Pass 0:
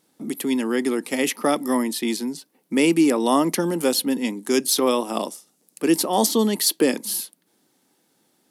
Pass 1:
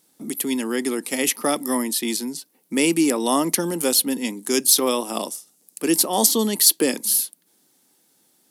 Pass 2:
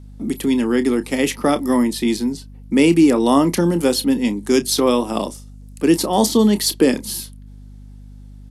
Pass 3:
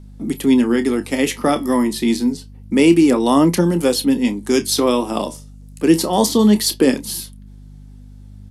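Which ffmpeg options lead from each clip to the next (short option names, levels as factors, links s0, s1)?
-af "highshelf=f=4500:g=10.5,volume=0.794"
-filter_complex "[0:a]aemphasis=mode=reproduction:type=bsi,asplit=2[s0][s1];[s1]adelay=29,volume=0.237[s2];[s0][s2]amix=inputs=2:normalize=0,aeval=exprs='val(0)+0.00891*(sin(2*PI*50*n/s)+sin(2*PI*2*50*n/s)/2+sin(2*PI*3*50*n/s)/3+sin(2*PI*4*50*n/s)/4+sin(2*PI*5*50*n/s)/5)':c=same,volume=1.5"
-af "flanger=delay=5:depth=9.3:regen=70:speed=0.27:shape=triangular,volume=1.78"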